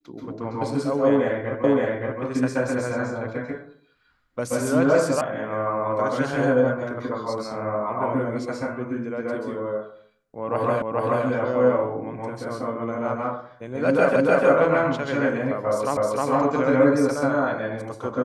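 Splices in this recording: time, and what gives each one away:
0:01.64: the same again, the last 0.57 s
0:05.21: cut off before it has died away
0:10.82: the same again, the last 0.43 s
0:14.16: the same again, the last 0.3 s
0:15.97: the same again, the last 0.31 s

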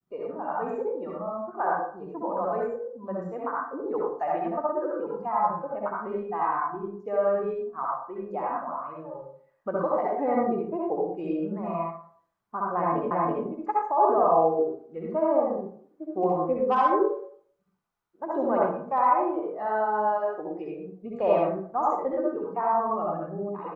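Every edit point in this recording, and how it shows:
0:13.11: the same again, the last 0.33 s

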